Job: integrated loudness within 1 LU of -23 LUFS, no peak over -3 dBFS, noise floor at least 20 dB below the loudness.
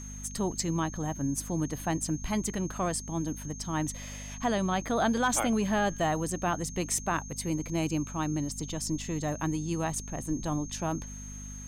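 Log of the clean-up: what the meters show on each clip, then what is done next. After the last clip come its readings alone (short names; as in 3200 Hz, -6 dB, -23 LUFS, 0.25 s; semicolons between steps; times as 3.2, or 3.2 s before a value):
hum 50 Hz; harmonics up to 250 Hz; hum level -41 dBFS; steady tone 6400 Hz; tone level -44 dBFS; loudness -31.0 LUFS; peak -15.5 dBFS; loudness target -23.0 LUFS
-> de-hum 50 Hz, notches 5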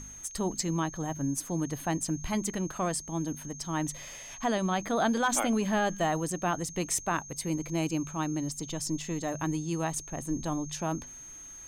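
hum none; steady tone 6400 Hz; tone level -44 dBFS
-> notch 6400 Hz, Q 30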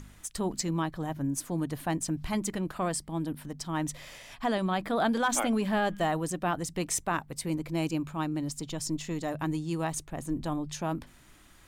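steady tone none; loudness -31.5 LUFS; peak -15.5 dBFS; loudness target -23.0 LUFS
-> gain +8.5 dB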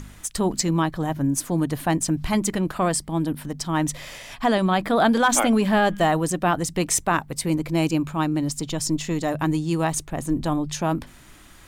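loudness -23.0 LUFS; peak -7.0 dBFS; noise floor -47 dBFS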